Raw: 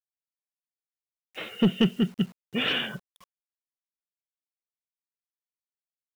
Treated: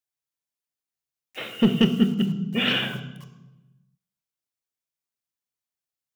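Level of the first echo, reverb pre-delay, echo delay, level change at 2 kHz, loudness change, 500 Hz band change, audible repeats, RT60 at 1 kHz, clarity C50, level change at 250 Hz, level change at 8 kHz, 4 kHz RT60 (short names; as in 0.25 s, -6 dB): none, 3 ms, none, +3.0 dB, +4.0 dB, +2.5 dB, none, 0.95 s, 11.0 dB, +4.5 dB, n/a, 0.75 s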